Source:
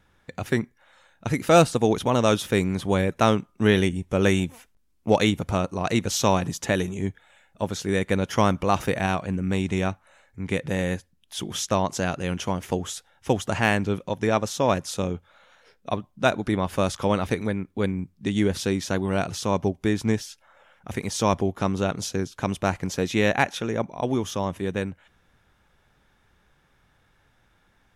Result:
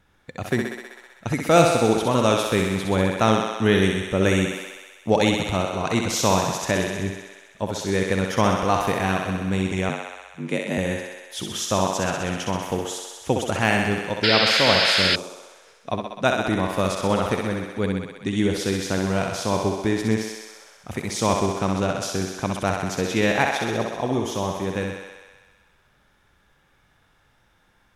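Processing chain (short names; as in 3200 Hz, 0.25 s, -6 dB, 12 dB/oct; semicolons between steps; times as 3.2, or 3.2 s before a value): thinning echo 64 ms, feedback 77%, high-pass 290 Hz, level -4 dB; 9.89–10.78 frequency shift +57 Hz; 14.23–15.16 painted sound noise 1300–5300 Hz -20 dBFS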